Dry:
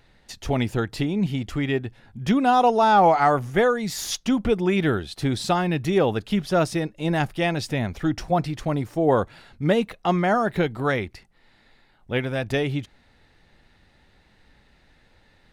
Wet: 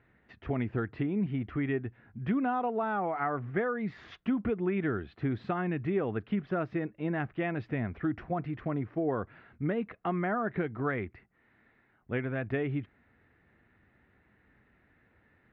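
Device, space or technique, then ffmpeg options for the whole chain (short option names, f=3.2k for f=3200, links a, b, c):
bass amplifier: -af "acompressor=threshold=-21dB:ratio=5,highpass=81,equalizer=f=160:t=q:w=4:g=-4,equalizer=f=550:t=q:w=4:g=-6,equalizer=f=860:t=q:w=4:g=-8,lowpass=f=2.1k:w=0.5412,lowpass=f=2.1k:w=1.3066,volume=-3.5dB"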